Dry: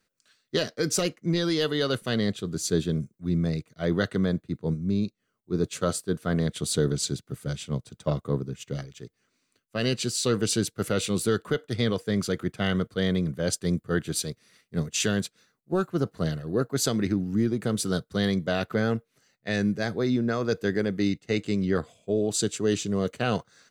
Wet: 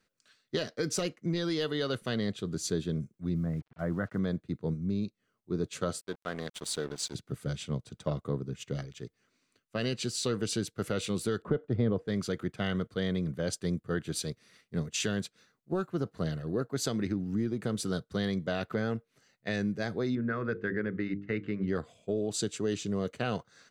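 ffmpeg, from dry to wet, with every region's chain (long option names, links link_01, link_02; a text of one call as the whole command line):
ffmpeg -i in.wav -filter_complex "[0:a]asettb=1/sr,asplit=3[link_01][link_02][link_03];[link_01]atrim=end=3.354[link_04];[link_02]atrim=start=3.35:end=4.19,asetpts=PTS-STARTPTS,afade=type=in:duration=0.004:curve=qsin,afade=type=out:start_time=0.836:duration=0.004:curve=qsin,lowpass=frequency=1700:width=0.5412,lowpass=frequency=1700:width=1.3066,equalizer=frequency=410:width_type=o:width=0.54:gain=-8.5,acrusher=bits=8:mix=0:aa=0.5[link_05];[link_03]atrim=start=4.186[link_06];[link_04][link_05]acrossfade=duration=0.004:curve1=hsin:curve2=qsin[link_07];[link_07][link_06]acrossfade=duration=0.004:curve1=qsin:curve2=hsin,asettb=1/sr,asplit=3[link_08][link_09][link_10];[link_08]atrim=end=6.014[link_11];[link_09]atrim=start=6.01:end=7.15,asetpts=PTS-STARTPTS,afade=type=in:duration=0.004:curve=qsin,afade=type=out:start_time=1.136:duration=0.004:curve=qsin,highpass=frequency=660:poles=1,aeval=exprs='sgn(val(0))*max(abs(val(0))-0.0075,0)':channel_layout=same[link_12];[link_10]atrim=start=7.146[link_13];[link_11][link_12]acrossfade=duration=0.004:curve1=hsin:curve2=qsin[link_14];[link_14][link_13]acrossfade=duration=0.004:curve1=qsin:curve2=hsin,asettb=1/sr,asplit=3[link_15][link_16][link_17];[link_15]atrim=end=11.424[link_18];[link_16]atrim=start=11.42:end=12.08,asetpts=PTS-STARTPTS,afade=type=in:duration=0.004:curve=qsin,afade=type=out:start_time=0.656:duration=0.004:curve=qsin,lowpass=frequency=2200:poles=1,tiltshelf=frequency=1400:gain=8[link_19];[link_17]atrim=start=12.076[link_20];[link_18][link_19]acrossfade=duration=0.004:curve1=hsin:curve2=qsin[link_21];[link_21][link_20]acrossfade=duration=0.004:curve1=qsin:curve2=hsin,asettb=1/sr,asplit=3[link_22][link_23][link_24];[link_22]atrim=end=20.154[link_25];[link_23]atrim=start=20.15:end=21.68,asetpts=PTS-STARTPTS,afade=type=in:duration=0.004:curve=qsin,afade=type=out:start_time=1.526:duration=0.004:curve=qsin,lowpass=frequency=1700:width_type=q:width=1.9,equalizer=frequency=750:width=1.7:gain=-10,bandreject=frequency=50:width_type=h:width=6,bandreject=frequency=100:width_type=h:width=6,bandreject=frequency=150:width_type=h:width=6,bandreject=frequency=200:width_type=h:width=6,bandreject=frequency=250:width_type=h:width=6,bandreject=frequency=300:width_type=h:width=6,bandreject=frequency=350:width_type=h:width=6,bandreject=frequency=400:width_type=h:width=6,bandreject=frequency=450:width_type=h:width=6,bandreject=frequency=500:width_type=h:width=6[link_26];[link_24]atrim=start=21.676[link_27];[link_25][link_26]acrossfade=duration=0.004:curve1=hsin:curve2=qsin[link_28];[link_28][link_27]acrossfade=duration=0.004:curve1=qsin:curve2=hsin,highshelf=frequency=8100:gain=-8,acompressor=threshold=-32dB:ratio=2" out.wav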